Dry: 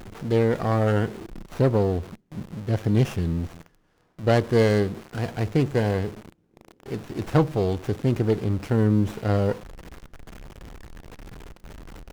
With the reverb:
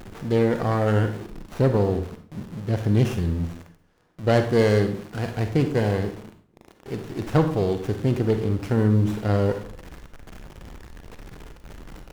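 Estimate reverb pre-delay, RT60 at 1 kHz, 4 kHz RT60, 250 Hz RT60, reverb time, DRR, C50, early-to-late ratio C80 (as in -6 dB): 40 ms, 0.50 s, 0.40 s, 0.50 s, 0.45 s, 7.0 dB, 9.0 dB, 13.5 dB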